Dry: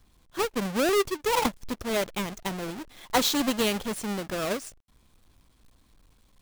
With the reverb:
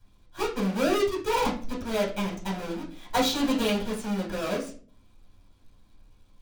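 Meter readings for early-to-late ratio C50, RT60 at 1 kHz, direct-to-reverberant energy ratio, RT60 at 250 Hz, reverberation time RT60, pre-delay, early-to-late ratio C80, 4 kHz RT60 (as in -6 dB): 9.0 dB, 0.40 s, -5.0 dB, 0.60 s, 0.45 s, 6 ms, 13.5 dB, 0.30 s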